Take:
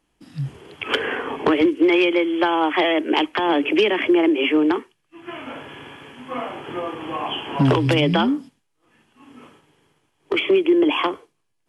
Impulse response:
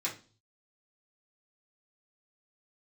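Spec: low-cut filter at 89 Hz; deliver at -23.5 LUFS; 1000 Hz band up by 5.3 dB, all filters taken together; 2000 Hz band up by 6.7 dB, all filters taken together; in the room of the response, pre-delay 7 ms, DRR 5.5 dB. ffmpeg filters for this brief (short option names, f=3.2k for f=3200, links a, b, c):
-filter_complex "[0:a]highpass=89,equalizer=f=1k:t=o:g=5,equalizer=f=2k:t=o:g=7,asplit=2[a][b];[1:a]atrim=start_sample=2205,adelay=7[c];[b][c]afir=irnorm=-1:irlink=0,volume=-9.5dB[d];[a][d]amix=inputs=2:normalize=0,volume=-7.5dB"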